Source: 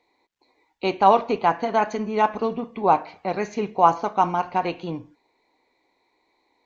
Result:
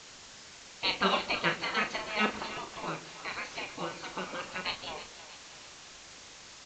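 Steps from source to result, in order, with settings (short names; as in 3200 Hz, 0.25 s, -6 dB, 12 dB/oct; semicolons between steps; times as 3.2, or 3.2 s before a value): LPF 4700 Hz 24 dB/oct; high shelf 3300 Hz +9.5 dB; spectral gate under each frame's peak -15 dB weak; 2.37–4.66 compressor, threshold -36 dBFS, peak gain reduction 12 dB; requantised 8-bit, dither triangular; doubler 38 ms -8 dB; split-band echo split 540 Hz, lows 0.131 s, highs 0.319 s, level -14 dB; gain +1.5 dB; µ-law 128 kbps 16000 Hz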